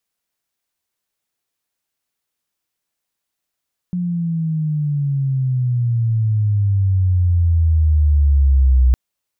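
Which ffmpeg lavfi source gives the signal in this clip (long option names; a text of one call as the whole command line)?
ffmpeg -f lavfi -i "aevalsrc='pow(10,(-18+9.5*t/5.01)/20)*sin(2*PI*180*5.01/log(62/180)*(exp(log(62/180)*t/5.01)-1))':duration=5.01:sample_rate=44100" out.wav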